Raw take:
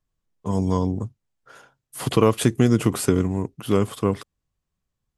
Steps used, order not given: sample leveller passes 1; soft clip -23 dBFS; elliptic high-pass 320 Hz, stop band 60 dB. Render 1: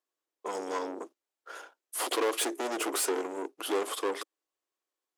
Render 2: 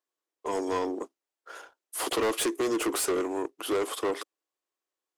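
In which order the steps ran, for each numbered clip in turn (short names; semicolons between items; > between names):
soft clip > sample leveller > elliptic high-pass; elliptic high-pass > soft clip > sample leveller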